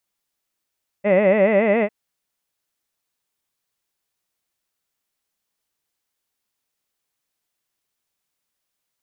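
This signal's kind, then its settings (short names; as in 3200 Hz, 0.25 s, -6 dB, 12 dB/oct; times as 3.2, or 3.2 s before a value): formant vowel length 0.85 s, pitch 192 Hz, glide +2.5 st, vibrato 7.1 Hz, vibrato depth 1.45 st, F1 570 Hz, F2 2000 Hz, F3 2600 Hz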